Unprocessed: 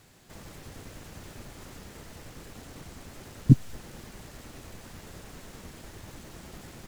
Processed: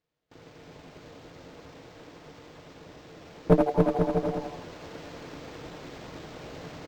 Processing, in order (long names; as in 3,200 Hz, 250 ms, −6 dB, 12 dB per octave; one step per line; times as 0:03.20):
lower of the sound and its delayed copy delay 5.2 ms
noise gate with hold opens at −42 dBFS
parametric band 140 Hz +7.5 dB 0.34 octaves
ring modulation 310 Hz
echo with shifted repeats 82 ms, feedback 39%, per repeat +140 Hz, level −6 dB
asymmetric clip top −20.5 dBFS
bouncing-ball delay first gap 280 ms, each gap 0.75×, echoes 5
speech leveller 2 s
linearly interpolated sample-rate reduction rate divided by 4×
level +1.5 dB